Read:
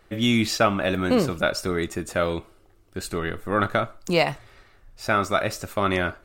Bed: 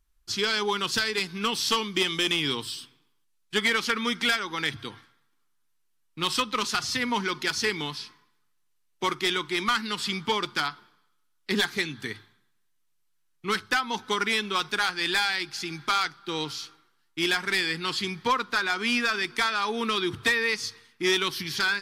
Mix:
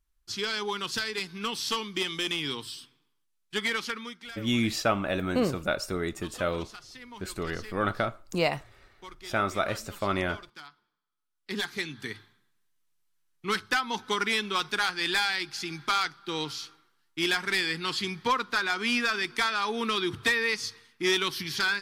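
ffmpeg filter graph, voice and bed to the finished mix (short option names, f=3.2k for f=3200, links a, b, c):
-filter_complex "[0:a]adelay=4250,volume=-5.5dB[a];[1:a]volume=12.5dB,afade=t=out:st=3.79:d=0.39:silence=0.199526,afade=t=in:st=11.03:d=1.22:silence=0.133352[b];[a][b]amix=inputs=2:normalize=0"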